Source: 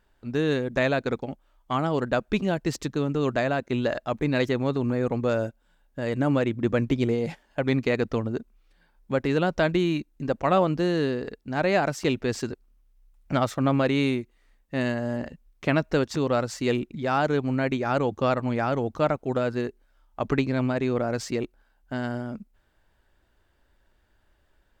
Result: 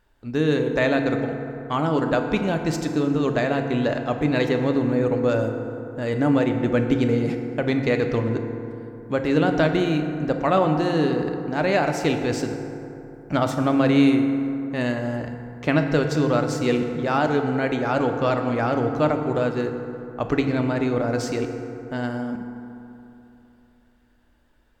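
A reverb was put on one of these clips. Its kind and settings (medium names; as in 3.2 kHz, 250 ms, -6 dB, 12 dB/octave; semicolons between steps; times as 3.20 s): FDN reverb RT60 3.1 s, high-frequency decay 0.4×, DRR 4.5 dB; trim +1.5 dB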